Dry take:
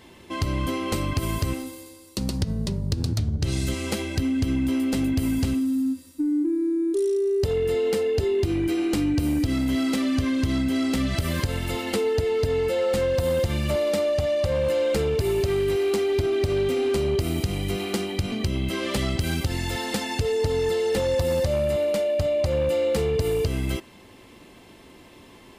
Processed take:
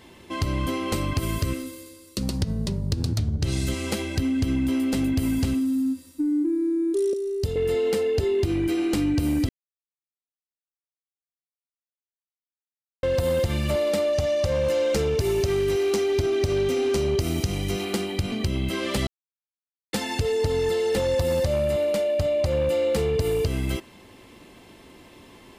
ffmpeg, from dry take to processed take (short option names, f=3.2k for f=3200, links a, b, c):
-filter_complex "[0:a]asettb=1/sr,asplit=3[a][b][c];[a]atrim=end=1.204[d];[b]atrim=start=1.2:end=2.23,asetpts=PTS-STARTPTS,afade=t=in:d=0.004:c=qsin,afade=t=out:st=1.026:d=0.004:c=qsin,asuperstop=centerf=840:order=4:qfactor=2.5[e];[c]atrim=start=2.226[f];[d][e]acrossfade=d=0.004:c1=hsin:c2=qsin[g];[g][f]acrossfade=d=0.004:c1=qsin:c2=hsin,asettb=1/sr,asplit=3[h][i][j];[h]atrim=end=7.134[k];[i]atrim=start=7.13:end=7.56,asetpts=PTS-STARTPTS,afade=t=in:d=0.004:c=qsin,afade=t=out:st=0.426:d=0.004:c=qsin,acrossover=split=340|3000[l][m][n];[m]acompressor=threshold=-36dB:ratio=6:attack=3.2:release=140:knee=2.83:detection=peak[o];[l][o][n]amix=inputs=3:normalize=0[p];[j]atrim=start=7.556[q];[k][p]acrossfade=d=0.004:c1=hsin:c2=qsin[r];[r][q]acrossfade=d=0.004:c1=qsin:c2=hsin,asettb=1/sr,asplit=3[s][t][u];[s]atrim=end=14.134[v];[t]atrim=start=14.13:end=17.85,asetpts=PTS-STARTPTS,afade=t=in:d=0.004:c=qsin,afade=t=out:st=3.716:d=0.004:c=qsin,equalizer=f=5.9k:t=o:w=0.38:g=7.5[w];[u]atrim=start=17.846[x];[v][w]acrossfade=d=0.004:c1=hsin:c2=qsin[y];[y][x]acrossfade=d=0.004:c1=qsin:c2=hsin,asplit=5[z][aa][ab][ac][ad];[z]atrim=end=9.49,asetpts=PTS-STARTPTS,afade=t=out:st=9.486:d=0.004:c=hsin[ae];[aa]atrim=start=9.49:end=13.03,asetpts=PTS-STARTPTS,volume=0[af];[ab]atrim=start=13.03:end=19.07,asetpts=PTS-STARTPTS,afade=t=in:d=0.004:c=hsin,afade=t=out:st=6.036:d=0.004:c=hsin[ag];[ac]atrim=start=19.07:end=19.93,asetpts=PTS-STARTPTS,volume=0[ah];[ad]atrim=start=19.93,asetpts=PTS-STARTPTS,afade=t=in:d=0.004:c=hsin[ai];[ae][af][ag][ah][ai]concat=n=5:v=0:a=1"